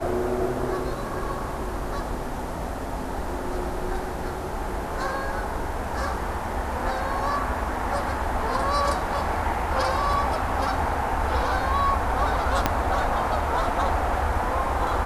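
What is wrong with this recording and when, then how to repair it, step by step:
0:12.66: click −5 dBFS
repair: click removal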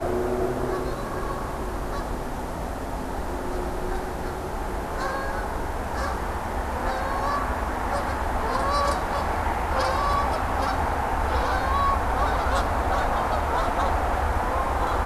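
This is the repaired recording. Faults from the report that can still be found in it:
0:12.66: click

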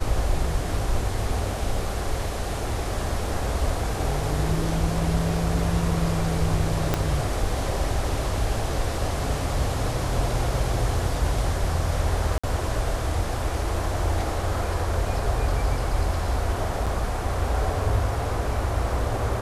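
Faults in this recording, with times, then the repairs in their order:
0:06.94: click −7 dBFS
0:12.38–0:12.44: drop-out 55 ms
0:16.86–0:16.87: drop-out 6.3 ms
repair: click removal
repair the gap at 0:12.38, 55 ms
repair the gap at 0:16.86, 6.3 ms

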